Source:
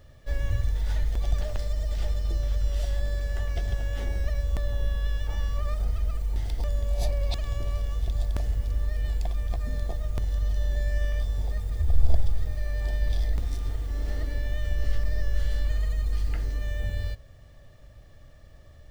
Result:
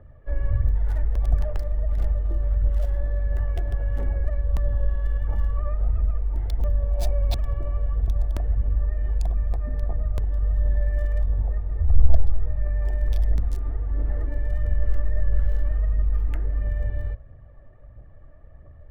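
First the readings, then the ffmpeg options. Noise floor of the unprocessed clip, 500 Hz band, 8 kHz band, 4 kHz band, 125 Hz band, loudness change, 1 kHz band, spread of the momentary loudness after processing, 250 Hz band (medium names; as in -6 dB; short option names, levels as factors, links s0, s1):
-50 dBFS, +1.5 dB, no reading, -6.5 dB, +3.5 dB, +3.5 dB, +1.0 dB, 4 LU, +1.5 dB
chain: -filter_complex "[0:a]aphaser=in_gain=1:out_gain=1:delay=3.5:decay=0.38:speed=1.5:type=triangular,acrossover=split=110|1800[s0][s1][s2];[s2]acrusher=bits=5:mix=0:aa=0.5[s3];[s0][s1][s3]amix=inputs=3:normalize=0,volume=1.12"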